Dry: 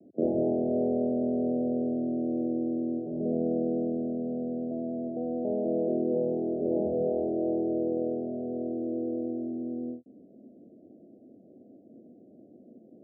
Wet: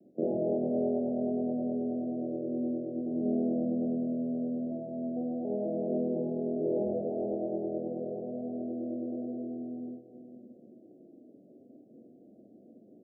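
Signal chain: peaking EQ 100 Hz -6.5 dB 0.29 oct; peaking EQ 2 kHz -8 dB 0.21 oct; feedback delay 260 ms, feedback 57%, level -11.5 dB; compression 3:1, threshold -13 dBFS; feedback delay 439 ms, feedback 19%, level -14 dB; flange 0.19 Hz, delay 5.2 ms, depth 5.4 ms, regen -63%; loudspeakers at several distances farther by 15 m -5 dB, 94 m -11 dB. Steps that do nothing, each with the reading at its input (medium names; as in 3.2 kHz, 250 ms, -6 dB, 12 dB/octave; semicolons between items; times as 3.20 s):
peaking EQ 2 kHz: input has nothing above 760 Hz; compression, threshold -13 dBFS: peak at its input -16.0 dBFS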